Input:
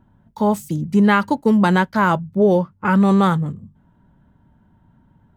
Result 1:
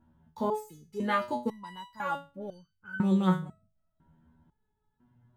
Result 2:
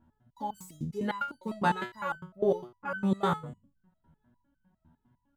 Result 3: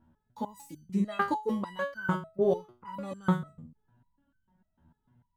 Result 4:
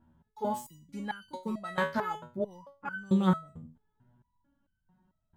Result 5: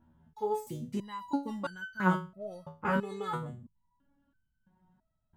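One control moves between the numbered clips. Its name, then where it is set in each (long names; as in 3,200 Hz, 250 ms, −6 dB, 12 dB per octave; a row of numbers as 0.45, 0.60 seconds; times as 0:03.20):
step-sequenced resonator, speed: 2, 9.9, 6.7, 4.5, 3 Hertz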